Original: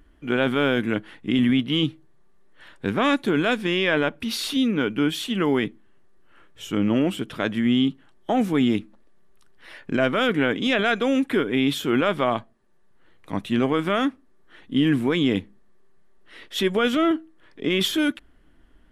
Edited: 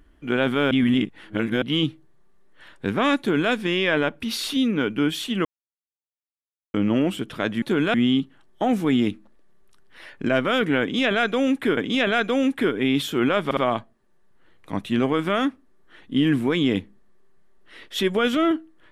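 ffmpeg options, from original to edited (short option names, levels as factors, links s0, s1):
-filter_complex "[0:a]asplit=10[s0][s1][s2][s3][s4][s5][s6][s7][s8][s9];[s0]atrim=end=0.712[s10];[s1]atrim=start=0.708:end=1.622,asetpts=PTS-STARTPTS,areverse[s11];[s2]atrim=start=1.618:end=5.45,asetpts=PTS-STARTPTS,afade=t=out:st=3.828:d=0.004:c=hsin[s12];[s3]atrim=start=5.45:end=6.74,asetpts=PTS-STARTPTS,volume=0[s13];[s4]atrim=start=6.74:end=7.622,asetpts=PTS-STARTPTS,afade=t=in:d=0.004:c=hsin[s14];[s5]atrim=start=3.188:end=3.512[s15];[s6]atrim=start=7.618:end=11.452[s16];[s7]atrim=start=10.488:end=12.232[s17];[s8]atrim=start=12.168:end=12.232[s18];[s9]atrim=start=12.168[s19];[s10][s11]acrossfade=d=0.004:c1=hsin:c2=hsin[s20];[s12][s13][s14]concat=n=3:v=0:a=1[s21];[s20][s21]acrossfade=d=0.004:c1=hsin:c2=hsin[s22];[s22][s15]acrossfade=d=0.004:c1=hsin:c2=hsin[s23];[s23][s16]acrossfade=d=0.004:c1=hsin:c2=hsin[s24];[s24][s17]acrossfade=d=0.004:c1=hsin:c2=hsin[s25];[s25][s18]acrossfade=d=0.004:c1=hsin:c2=hsin[s26];[s26][s19]acrossfade=d=0.004:c1=hsin:c2=hsin"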